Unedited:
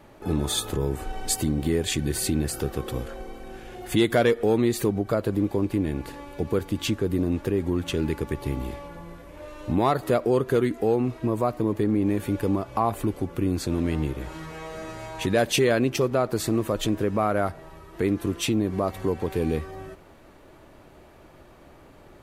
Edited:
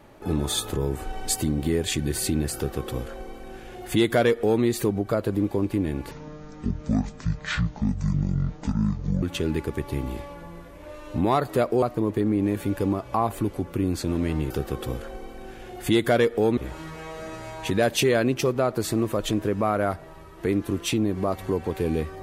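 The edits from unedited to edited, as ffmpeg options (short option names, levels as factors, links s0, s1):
-filter_complex "[0:a]asplit=6[s0][s1][s2][s3][s4][s5];[s0]atrim=end=6.114[s6];[s1]atrim=start=6.11:end=7.76,asetpts=PTS-STARTPTS,asetrate=23373,aresample=44100,atrim=end_sample=137292,asetpts=PTS-STARTPTS[s7];[s2]atrim=start=7.756:end=10.362[s8];[s3]atrim=start=11.448:end=14.132[s9];[s4]atrim=start=2.558:end=4.632[s10];[s5]atrim=start=14.128[s11];[s6][s7]acrossfade=d=0.004:c1=hsin:c2=hsin[s12];[s12][s8]acrossfade=d=0.004:c1=hsin:c2=hsin[s13];[s13][s9]acrossfade=d=0.004:c1=hsin:c2=hsin[s14];[s14][s10]acrossfade=d=0.004:c1=hsin:c2=hsin[s15];[s15][s11]acrossfade=d=0.004:c1=hsin:c2=hsin"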